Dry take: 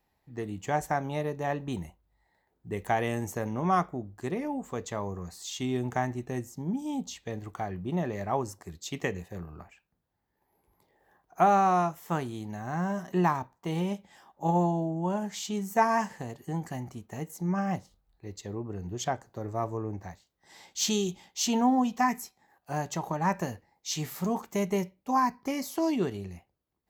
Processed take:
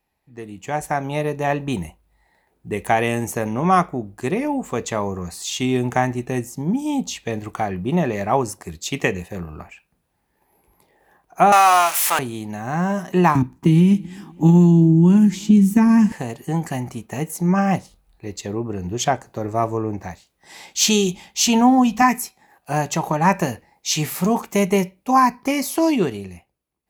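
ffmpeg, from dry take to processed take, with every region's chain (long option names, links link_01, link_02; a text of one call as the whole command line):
ffmpeg -i in.wav -filter_complex "[0:a]asettb=1/sr,asplit=3[link_01][link_02][link_03];[link_01]atrim=end=11.524[link_04];[link_02]atrim=start=11.52:end=12.19,asetpts=PTS-STARTPTS,afade=type=in:duration=0.004:curve=qsin,afade=type=out:start_time=0.666:duration=0.004:curve=qsin,aeval=exprs='val(0)+0.5*0.0188*sgn(val(0))':channel_layout=same,highpass=420,tiltshelf=frequency=670:gain=-9.5[link_05];[link_03]atrim=start=12.186[link_06];[link_04][link_05]acrossfade=duration=0.004:curve1=hsin:curve2=qsin[link_07];[link_07][link_06]acrossfade=duration=0.004:curve1=qsin:curve2=hsin,asettb=1/sr,asplit=3[link_08][link_09][link_10];[link_08]atrim=end=13.354[link_11];[link_09]atrim=start=13.35:end=16.12,asetpts=PTS-STARTPTS,afade=type=in:duration=0.004:curve=qsin,afade=type=out:start_time=2.766:duration=0.004:curve=qsin,lowshelf=frequency=410:width_type=q:width=3:gain=12.5,acrossover=split=170|1500[link_12][link_13][link_14];[link_12]acompressor=threshold=-25dB:ratio=4[link_15];[link_13]acompressor=threshold=-29dB:ratio=4[link_16];[link_14]acompressor=threshold=-46dB:ratio=4[link_17];[link_15][link_16][link_17]amix=inputs=3:normalize=0,aecho=1:1:275|550:0.0631|0.0233,atrim=end_sample=122157[link_18];[link_10]atrim=start=16.116[link_19];[link_11][link_18]acrossfade=duration=0.004:curve1=hsin:curve2=qsin[link_20];[link_20][link_19]acrossfade=duration=0.004:curve1=qsin:curve2=hsin,asettb=1/sr,asplit=3[link_21][link_22][link_23];[link_21]atrim=end=21.004[link_24];[link_22]atrim=start=21:end=22.02,asetpts=PTS-STARTPTS,afade=type=in:duration=0.004:curve=qsin,afade=type=out:start_time=1.016:duration=0.004:curve=qsin,asubboost=boost=12:cutoff=160,bandreject=frequency=105.9:width_type=h:width=4,bandreject=frequency=211.8:width_type=h:width=4,bandreject=frequency=317.7:width_type=h:width=4[link_25];[link_23]atrim=start=22.016[link_26];[link_24][link_25]acrossfade=duration=0.004:curve1=hsin:curve2=qsin[link_27];[link_27][link_26]acrossfade=duration=0.004:curve1=qsin:curve2=hsin,equalizer=frequency=100:width_type=o:width=0.33:gain=-5,equalizer=frequency=2500:width_type=o:width=0.33:gain=6,equalizer=frequency=10000:width_type=o:width=0.33:gain=8,dynaudnorm=framelen=170:gausssize=11:maxgain=11.5dB" out.wav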